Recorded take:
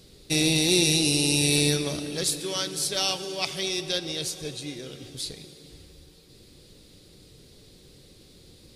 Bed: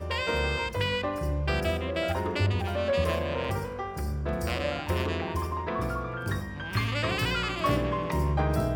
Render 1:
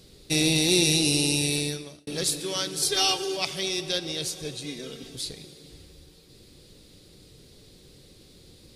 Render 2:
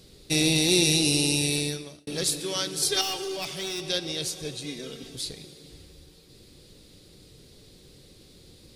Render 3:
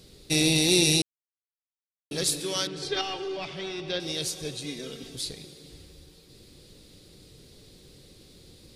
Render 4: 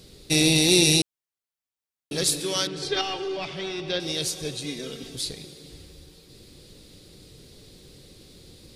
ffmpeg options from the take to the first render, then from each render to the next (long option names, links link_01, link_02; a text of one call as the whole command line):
ffmpeg -i in.wav -filter_complex "[0:a]asettb=1/sr,asplit=3[link_01][link_02][link_03];[link_01]atrim=end=2.824[link_04];[link_02]atrim=start=2.82:end=3.37,asetpts=PTS-STARTPTS,afade=type=in:duration=0.004:curve=qsin,afade=type=out:start_time=0.546:duration=0.004:curve=qsin,aecho=1:1:2.5:0.99,atrim=end_sample=24255[link_05];[link_03]atrim=start=3.366[link_06];[link_04][link_05]acrossfade=duration=0.004:curve1=hsin:curve2=qsin[link_07];[link_07][link_06]acrossfade=duration=0.004:curve1=qsin:curve2=hsin,asettb=1/sr,asplit=3[link_08][link_09][link_10];[link_08]atrim=end=4.644[link_11];[link_09]atrim=start=4.64:end=5.16,asetpts=PTS-STARTPTS,afade=type=in:duration=0.004:curve=qsin,afade=type=out:start_time=0.516:duration=0.004:curve=qsin,aecho=1:1:4.5:0.65,atrim=end_sample=22932[link_12];[link_10]atrim=start=5.156[link_13];[link_11][link_12]acrossfade=duration=0.004:curve1=hsin:curve2=qsin[link_14];[link_14][link_13]acrossfade=duration=0.004:curve1=qsin:curve2=hsin,asplit=2[link_15][link_16];[link_15]atrim=end=2.07,asetpts=PTS-STARTPTS,afade=type=out:start_time=1.19:duration=0.88[link_17];[link_16]atrim=start=2.07,asetpts=PTS-STARTPTS,afade=type=in:duration=0.004:curve=hsin[link_18];[link_17][link_18]concat=n=2:v=0:a=1" out.wav
ffmpeg -i in.wav -filter_complex "[0:a]asettb=1/sr,asplit=3[link_01][link_02][link_03];[link_01]atrim=end=3.014[link_04];[link_02]atrim=start=3.01:end=3.85,asetpts=PTS-STARTPTS,afade=type=in:duration=0.004:curve=qsin,afade=type=out:start_time=0.836:duration=0.004:curve=qsin,aeval=exprs='(tanh(22.4*val(0)+0.1)-tanh(0.1))/22.4':channel_layout=same[link_05];[link_03]atrim=start=3.846[link_06];[link_04][link_05]acrossfade=duration=0.004:curve1=hsin:curve2=qsin[link_07];[link_07][link_06]acrossfade=duration=0.004:curve1=qsin:curve2=hsin" out.wav
ffmpeg -i in.wav -filter_complex "[0:a]asettb=1/sr,asplit=3[link_01][link_02][link_03];[link_01]atrim=end=2.674[link_04];[link_02]atrim=start=2.67:end=4,asetpts=PTS-STARTPTS,afade=type=in:duration=0.004:curve=qsin,afade=type=out:start_time=1.326:duration=0.004:curve=qsin,lowpass=3000[link_05];[link_03]atrim=start=3.996[link_06];[link_04][link_05]acrossfade=duration=0.004:curve1=hsin:curve2=qsin[link_07];[link_07][link_06]acrossfade=duration=0.004:curve1=qsin:curve2=hsin,asplit=3[link_08][link_09][link_10];[link_08]atrim=end=1.02,asetpts=PTS-STARTPTS,afade=type=out:start_time=1.016:duration=0.004:curve=hsin[link_11];[link_09]atrim=start=1.02:end=2.11,asetpts=PTS-STARTPTS,volume=0[link_12];[link_10]atrim=start=2.11,asetpts=PTS-STARTPTS,afade=type=in:duration=0.004:curve=hsin[link_13];[link_11][link_12][link_13]concat=n=3:v=0:a=1" out.wav
ffmpeg -i in.wav -af "volume=3dB" out.wav